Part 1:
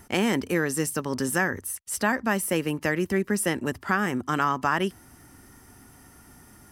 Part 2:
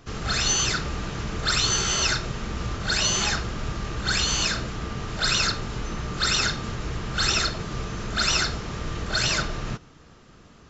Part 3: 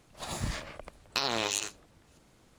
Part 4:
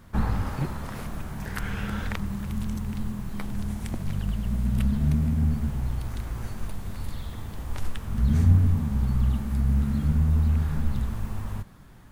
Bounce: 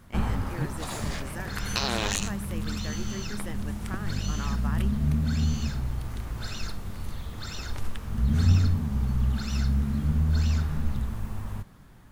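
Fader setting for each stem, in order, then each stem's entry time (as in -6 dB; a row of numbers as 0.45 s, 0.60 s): -15.5 dB, -17.5 dB, +1.0 dB, -2.0 dB; 0.00 s, 1.20 s, 0.60 s, 0.00 s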